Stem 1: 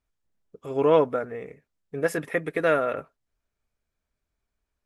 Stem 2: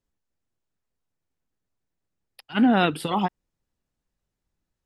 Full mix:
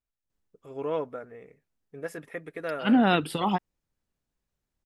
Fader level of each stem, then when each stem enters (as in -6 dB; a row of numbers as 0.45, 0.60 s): -11.0, -2.0 dB; 0.00, 0.30 s